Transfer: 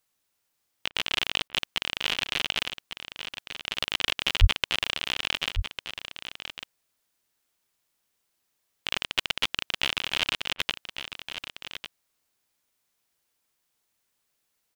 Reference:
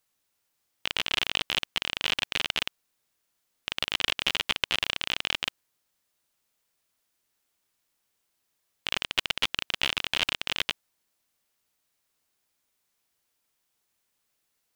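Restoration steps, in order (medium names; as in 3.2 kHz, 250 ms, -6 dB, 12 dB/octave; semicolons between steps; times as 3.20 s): 4.40–4.52 s: high-pass 140 Hz 24 dB/octave; interpolate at 0.89/1.48/10.53 s, 58 ms; inverse comb 1150 ms -10 dB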